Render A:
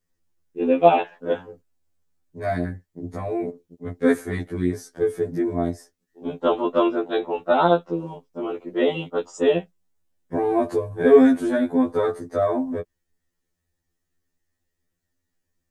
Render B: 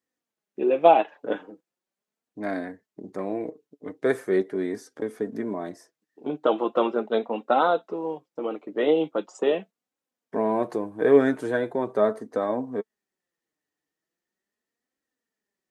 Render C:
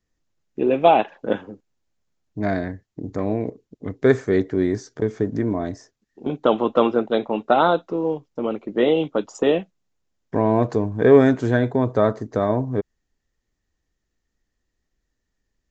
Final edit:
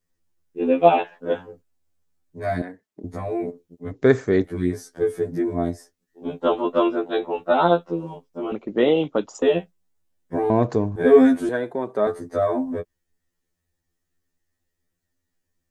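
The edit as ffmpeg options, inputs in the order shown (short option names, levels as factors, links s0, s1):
-filter_complex "[1:a]asplit=2[s0][s1];[2:a]asplit=3[s2][s3][s4];[0:a]asplit=6[s5][s6][s7][s8][s9][s10];[s5]atrim=end=2.622[s11];[s0]atrim=start=2.618:end=3.042[s12];[s6]atrim=start=3.038:end=3.912[s13];[s2]atrim=start=3.908:end=4.442[s14];[s7]atrim=start=4.438:end=8.522[s15];[s3]atrim=start=8.518:end=9.422[s16];[s8]atrim=start=9.418:end=10.502[s17];[s4]atrim=start=10.498:end=10.962[s18];[s9]atrim=start=10.958:end=11.492[s19];[s1]atrim=start=11.488:end=12.072[s20];[s10]atrim=start=12.068[s21];[s11][s12]acrossfade=d=0.004:c1=hsin:c2=hsin[s22];[s22][s13]acrossfade=d=0.004:c1=hsin:c2=hsin[s23];[s23][s14]acrossfade=d=0.004:c1=hsin:c2=hsin[s24];[s24][s15]acrossfade=d=0.004:c1=hsin:c2=hsin[s25];[s25][s16]acrossfade=d=0.004:c1=hsin:c2=hsin[s26];[s26][s17]acrossfade=d=0.004:c1=hsin:c2=hsin[s27];[s27][s18]acrossfade=d=0.004:c1=hsin:c2=hsin[s28];[s28][s19]acrossfade=d=0.004:c1=hsin:c2=hsin[s29];[s29][s20]acrossfade=d=0.004:c1=hsin:c2=hsin[s30];[s30][s21]acrossfade=d=0.004:c1=hsin:c2=hsin"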